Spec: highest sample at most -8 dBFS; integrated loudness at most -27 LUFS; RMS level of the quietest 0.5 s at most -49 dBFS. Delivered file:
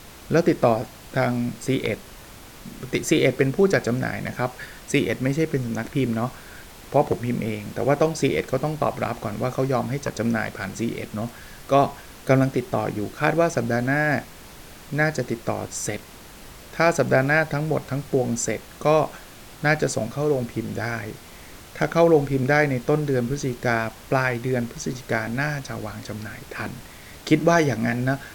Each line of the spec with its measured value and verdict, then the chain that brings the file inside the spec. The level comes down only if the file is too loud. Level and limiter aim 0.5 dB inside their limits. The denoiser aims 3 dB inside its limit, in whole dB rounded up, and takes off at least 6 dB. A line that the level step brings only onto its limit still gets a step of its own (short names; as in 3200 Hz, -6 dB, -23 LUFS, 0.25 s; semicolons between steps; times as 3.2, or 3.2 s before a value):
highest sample -5.5 dBFS: fail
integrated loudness -23.5 LUFS: fail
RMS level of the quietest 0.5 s -43 dBFS: fail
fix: denoiser 6 dB, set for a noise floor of -43 dBFS; gain -4 dB